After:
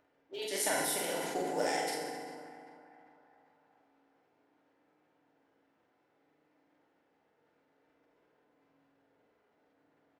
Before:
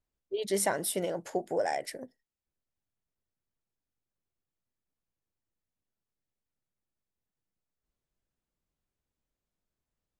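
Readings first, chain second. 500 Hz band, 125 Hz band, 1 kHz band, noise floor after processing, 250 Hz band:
−4.0 dB, −7.0 dB, −0.5 dB, −74 dBFS, −3.0 dB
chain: spectral envelope flattened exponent 0.6
high-pass filter 270 Hz 12 dB per octave
low-pass that shuts in the quiet parts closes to 1,300 Hz, open at −31.5 dBFS
harmonic and percussive parts rebalanced harmonic −8 dB
parametric band 1,100 Hz −6 dB 0.33 octaves
upward compression, threshold −54 dBFS
soft clipping −18.5 dBFS, distortion −23 dB
double-tracking delay 47 ms −4 dB
feedback echo with a band-pass in the loop 395 ms, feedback 58%, band-pass 1,100 Hz, level −14 dB
feedback delay network reverb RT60 1.8 s, low-frequency decay 1.4×, high-frequency decay 0.65×, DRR −1 dB
level that may fall only so fast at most 25 dB per second
level −4 dB

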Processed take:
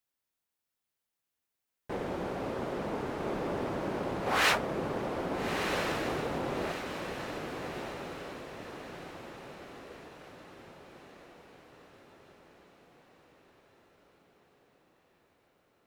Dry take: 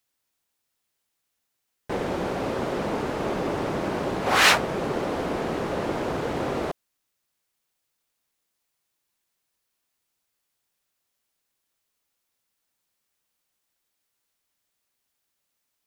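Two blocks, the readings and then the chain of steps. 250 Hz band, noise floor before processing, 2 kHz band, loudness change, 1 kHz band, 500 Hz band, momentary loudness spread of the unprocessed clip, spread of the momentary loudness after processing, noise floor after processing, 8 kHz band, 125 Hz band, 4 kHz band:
−6.0 dB, −79 dBFS, −7.0 dB, −8.5 dB, −6.5 dB, −6.0 dB, 11 LU, 20 LU, below −85 dBFS, −9.5 dB, −6.0 dB, −8.5 dB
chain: parametric band 6,300 Hz −3.5 dB 2.1 octaves
on a send: feedback delay with all-pass diffusion 1,319 ms, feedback 53%, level −5.5 dB
on the sum: level −7.5 dB

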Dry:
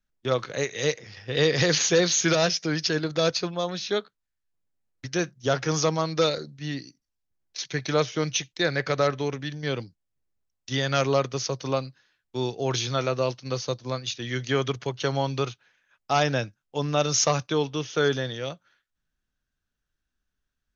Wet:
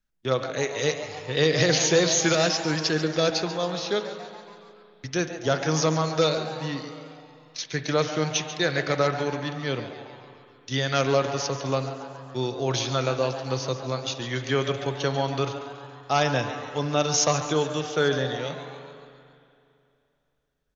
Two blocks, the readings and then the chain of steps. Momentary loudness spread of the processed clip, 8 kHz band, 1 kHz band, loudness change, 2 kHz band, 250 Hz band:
15 LU, can't be measured, +1.5 dB, +0.5 dB, +1.0 dB, +1.0 dB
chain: on a send: echo with shifted repeats 140 ms, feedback 57%, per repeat +150 Hz, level −13 dB
on the sum: spring reverb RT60 2.7 s, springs 38/45/57 ms, chirp 65 ms, DRR 9.5 dB

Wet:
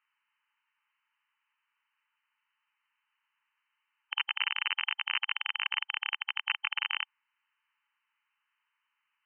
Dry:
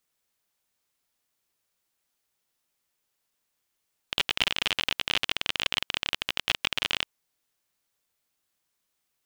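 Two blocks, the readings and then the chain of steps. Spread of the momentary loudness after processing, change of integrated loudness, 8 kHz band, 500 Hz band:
4 LU, −4.0 dB, below −35 dB, below −30 dB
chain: linear-phase brick-wall band-pass 830–3,100 Hz
brickwall limiter −21 dBFS, peak gain reduction 12.5 dB
level +6.5 dB

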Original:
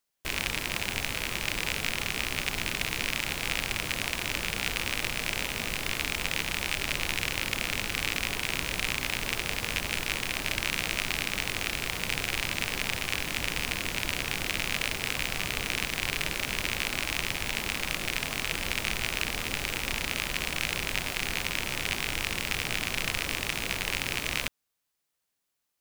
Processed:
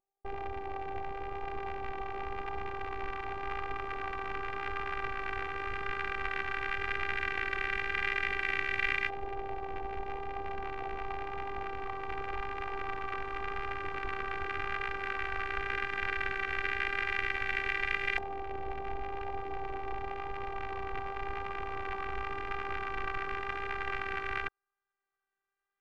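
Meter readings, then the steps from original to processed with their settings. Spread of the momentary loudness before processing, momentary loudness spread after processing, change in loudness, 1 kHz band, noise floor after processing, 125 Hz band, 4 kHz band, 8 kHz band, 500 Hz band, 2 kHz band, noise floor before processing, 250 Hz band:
1 LU, 8 LU, −6.0 dB, +3.5 dB, below −85 dBFS, −9.0 dB, −16.5 dB, below −30 dB, +0.5 dB, −4.5 dB, −81 dBFS, −8.5 dB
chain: auto-filter low-pass saw up 0.11 Hz 740–1,900 Hz
phases set to zero 394 Hz
pitch vibrato 0.9 Hz 9.5 cents

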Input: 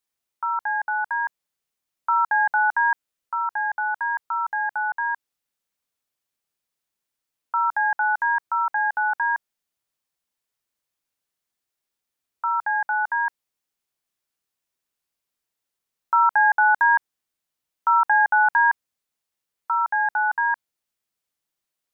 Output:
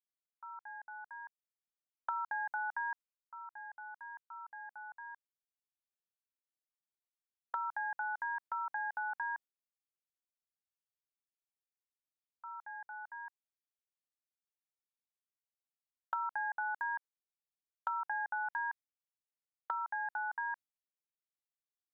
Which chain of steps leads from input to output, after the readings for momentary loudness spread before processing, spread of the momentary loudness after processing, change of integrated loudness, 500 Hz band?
11 LU, 13 LU, −18.0 dB, can't be measured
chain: noise gate with hold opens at −16 dBFS
downward compressor 5 to 1, threshold −35 dBFS, peak gain reduction 18 dB
level −2 dB

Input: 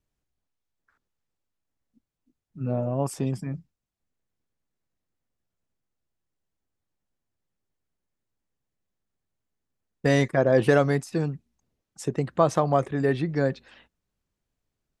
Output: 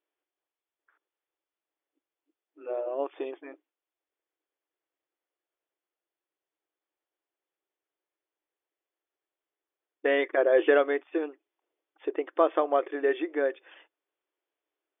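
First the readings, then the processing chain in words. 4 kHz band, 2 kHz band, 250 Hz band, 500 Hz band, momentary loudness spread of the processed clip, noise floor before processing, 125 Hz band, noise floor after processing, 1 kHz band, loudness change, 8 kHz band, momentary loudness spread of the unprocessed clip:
−4.0 dB, −0.5 dB, −7.5 dB, −1.0 dB, 15 LU, −85 dBFS, below −40 dB, below −85 dBFS, −3.0 dB, −2.5 dB, below −35 dB, 14 LU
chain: linear-phase brick-wall band-pass 290–3,600 Hz
dynamic equaliser 870 Hz, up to −5 dB, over −37 dBFS, Q 1.9

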